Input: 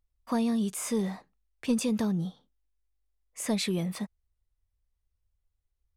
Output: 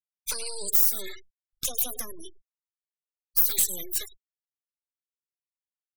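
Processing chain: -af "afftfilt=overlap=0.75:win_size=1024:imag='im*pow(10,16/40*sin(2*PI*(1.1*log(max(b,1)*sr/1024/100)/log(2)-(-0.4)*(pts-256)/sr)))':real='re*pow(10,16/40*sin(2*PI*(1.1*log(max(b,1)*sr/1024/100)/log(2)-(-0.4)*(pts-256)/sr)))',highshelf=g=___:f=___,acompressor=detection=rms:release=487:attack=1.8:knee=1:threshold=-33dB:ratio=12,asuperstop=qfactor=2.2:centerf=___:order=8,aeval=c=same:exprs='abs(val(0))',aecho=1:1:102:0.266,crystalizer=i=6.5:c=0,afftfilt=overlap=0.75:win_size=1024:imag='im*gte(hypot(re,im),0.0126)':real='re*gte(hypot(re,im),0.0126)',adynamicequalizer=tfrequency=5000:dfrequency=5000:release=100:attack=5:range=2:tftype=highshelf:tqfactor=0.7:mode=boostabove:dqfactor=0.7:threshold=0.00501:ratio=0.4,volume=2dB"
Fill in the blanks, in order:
6, 2500, 640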